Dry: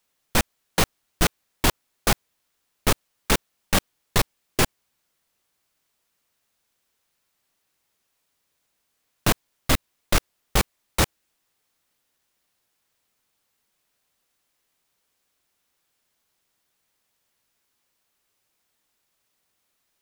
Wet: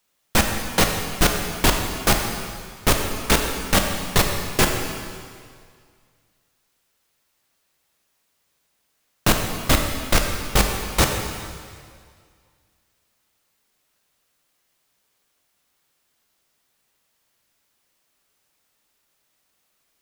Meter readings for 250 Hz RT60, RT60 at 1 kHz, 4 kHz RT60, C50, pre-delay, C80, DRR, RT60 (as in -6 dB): 1.9 s, 2.0 s, 1.9 s, 4.0 dB, 6 ms, 5.0 dB, 2.5 dB, 2.1 s